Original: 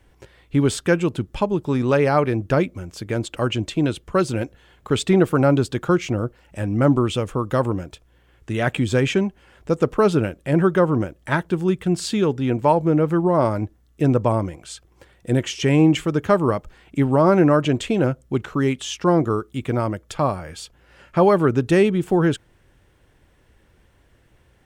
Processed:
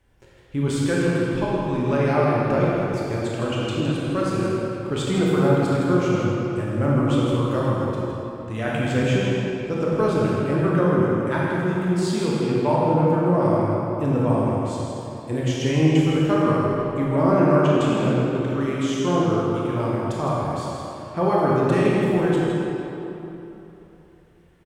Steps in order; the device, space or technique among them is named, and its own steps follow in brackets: cave (delay 162 ms -8 dB; reverberation RT60 3.3 s, pre-delay 20 ms, DRR -5.5 dB); trim -8.5 dB

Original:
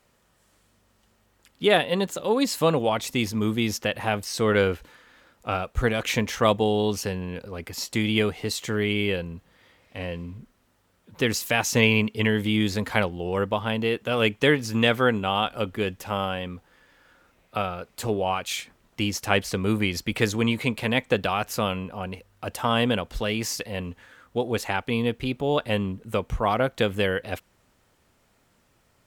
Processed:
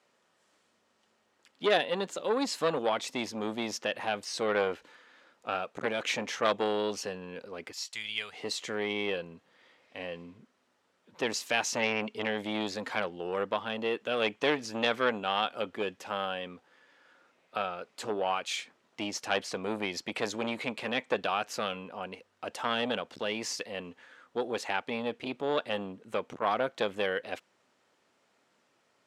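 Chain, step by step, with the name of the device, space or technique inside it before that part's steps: 7.72–8.33 s: amplifier tone stack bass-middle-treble 10-0-10; public-address speaker with an overloaded transformer (transformer saturation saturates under 1.6 kHz; band-pass 280–6900 Hz); trim -3.5 dB

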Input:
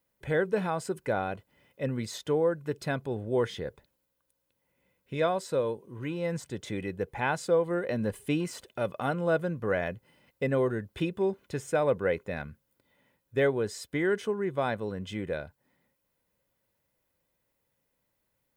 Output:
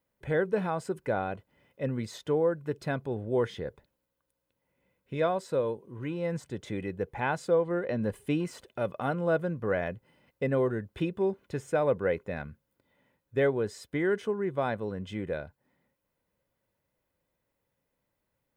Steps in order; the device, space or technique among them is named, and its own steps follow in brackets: behind a face mask (treble shelf 2.9 kHz -7 dB); 7.61–8.02 s: low-pass 6.8 kHz 12 dB/octave

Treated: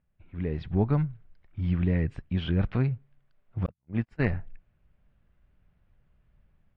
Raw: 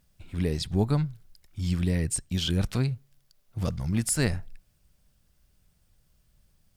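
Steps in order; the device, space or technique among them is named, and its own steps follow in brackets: 3.66–4.20 s: gate -24 dBFS, range -55 dB; action camera in a waterproof case (low-pass 2.4 kHz 24 dB/octave; level rider gain up to 9.5 dB; trim -8.5 dB; AAC 48 kbps 44.1 kHz)

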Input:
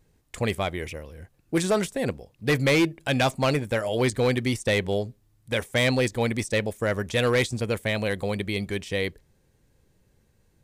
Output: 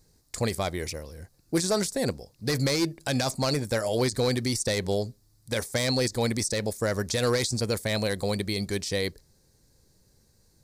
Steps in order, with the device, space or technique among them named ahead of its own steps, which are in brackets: over-bright horn tweeter (resonant high shelf 3.7 kHz +7 dB, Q 3; peak limiter -17 dBFS, peak gain reduction 10.5 dB)

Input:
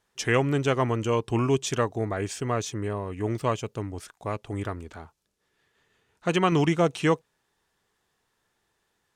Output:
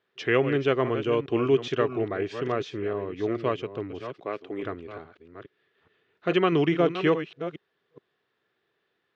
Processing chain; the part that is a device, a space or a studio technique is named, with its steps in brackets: chunks repeated in reverse 420 ms, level -10 dB; 4.13–4.63 s: high-pass 220 Hz 12 dB/octave; kitchen radio (cabinet simulation 160–3800 Hz, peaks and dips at 210 Hz -5 dB, 390 Hz +5 dB, 890 Hz -9 dB)

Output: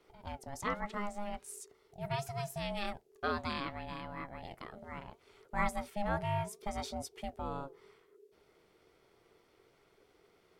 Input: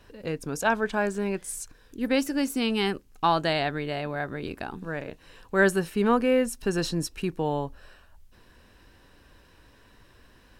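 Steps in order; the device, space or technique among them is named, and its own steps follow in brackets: alien voice (ring modulator 410 Hz; flange 0.71 Hz, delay 0.7 ms, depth 5.4 ms, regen +88%); trim -4.5 dB

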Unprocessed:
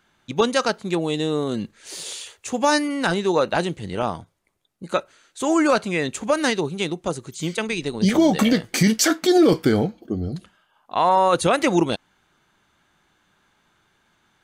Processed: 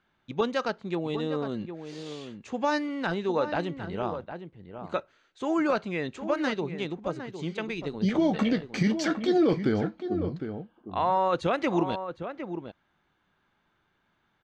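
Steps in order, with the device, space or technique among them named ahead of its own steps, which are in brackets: shout across a valley (distance through air 180 m; echo from a far wall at 130 m, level -9 dB); trim -7 dB

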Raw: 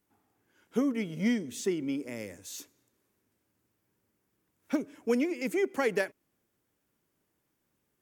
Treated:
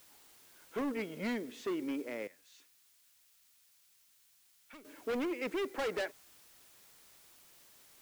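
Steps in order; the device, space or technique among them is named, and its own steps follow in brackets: aircraft radio (band-pass 370–2400 Hz; hard clipper -34 dBFS, distortion -6 dB; white noise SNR 20 dB); 2.27–4.85 s: amplifier tone stack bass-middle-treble 5-5-5; trim +2 dB

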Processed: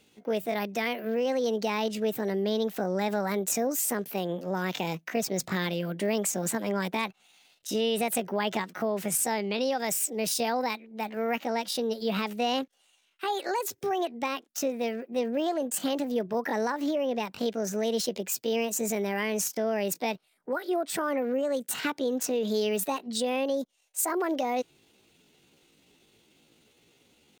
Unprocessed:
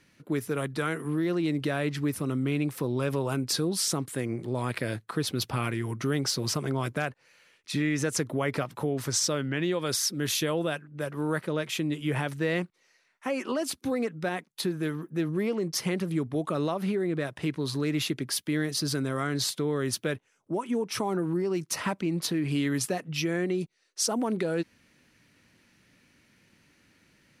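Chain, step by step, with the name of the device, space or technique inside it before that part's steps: chipmunk voice (pitch shift +7 st)

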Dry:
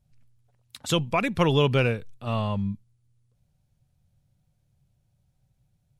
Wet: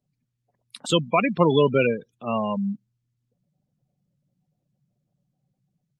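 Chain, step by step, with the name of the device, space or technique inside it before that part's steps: noise-suppressed video call (high-pass 170 Hz 24 dB/octave; spectral gate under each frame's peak -15 dB strong; level rider gain up to 5 dB; Opus 32 kbps 48 kHz)

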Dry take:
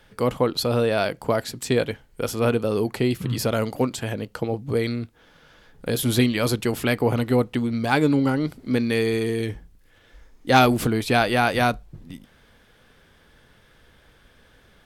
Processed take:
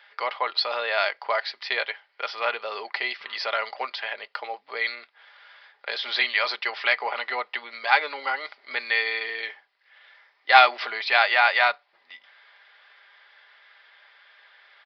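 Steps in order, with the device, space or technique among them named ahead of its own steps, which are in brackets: comb 5 ms, depth 41%; musical greeting card (resampled via 11.025 kHz; high-pass 730 Hz 24 dB/octave; peaking EQ 2 kHz +8 dB 0.35 oct); trim +2 dB

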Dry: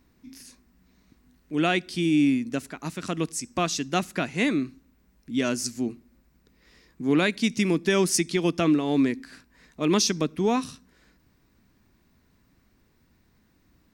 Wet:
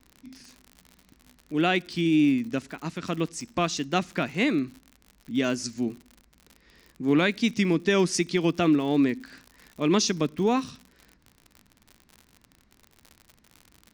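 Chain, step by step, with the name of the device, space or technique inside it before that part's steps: lo-fi chain (low-pass 5.8 kHz 12 dB/octave; wow and flutter; crackle 71 per s -36 dBFS)

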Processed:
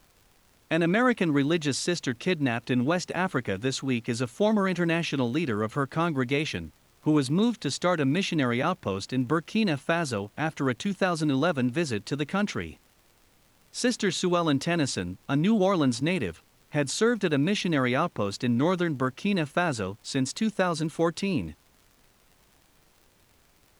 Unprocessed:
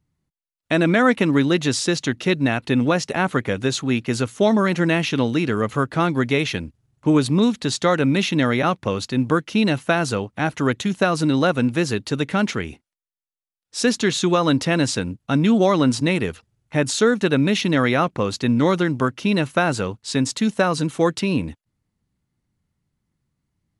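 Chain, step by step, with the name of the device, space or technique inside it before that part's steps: vinyl LP (wow and flutter 21 cents; crackle; pink noise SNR 35 dB); trim -6.5 dB

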